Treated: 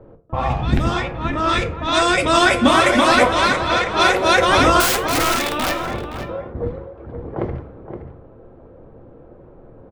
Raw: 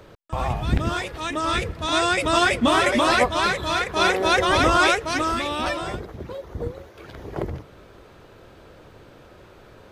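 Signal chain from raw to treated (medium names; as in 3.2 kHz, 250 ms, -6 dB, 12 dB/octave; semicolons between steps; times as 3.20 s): level-controlled noise filter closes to 590 Hz, open at -16.5 dBFS; 4.80–5.72 s: integer overflow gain 18 dB; echo from a far wall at 89 m, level -9 dB; on a send at -5.5 dB: reverberation RT60 0.45 s, pre-delay 4 ms; on the sum: trim +3.5 dB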